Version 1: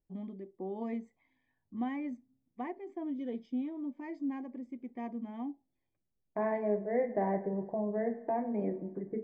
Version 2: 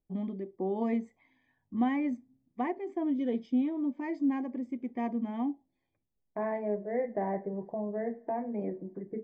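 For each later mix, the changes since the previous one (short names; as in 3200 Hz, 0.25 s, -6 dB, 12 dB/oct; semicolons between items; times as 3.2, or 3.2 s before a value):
first voice +7.0 dB; second voice: send -10.0 dB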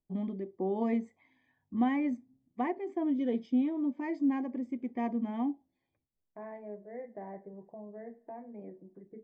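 second voice -11.5 dB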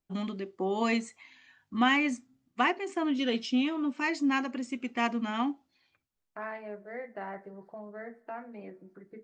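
master: remove running mean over 32 samples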